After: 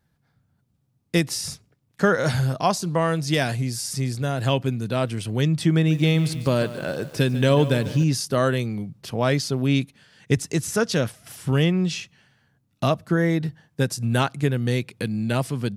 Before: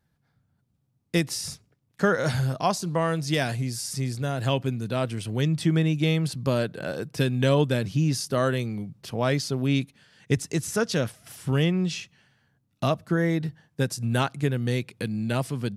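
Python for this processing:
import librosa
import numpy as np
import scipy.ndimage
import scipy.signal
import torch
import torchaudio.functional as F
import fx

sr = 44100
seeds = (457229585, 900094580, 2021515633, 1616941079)

y = fx.echo_crushed(x, sr, ms=145, feedback_pct=55, bits=7, wet_db=-14.0, at=(5.73, 8.04))
y = y * librosa.db_to_amplitude(3.0)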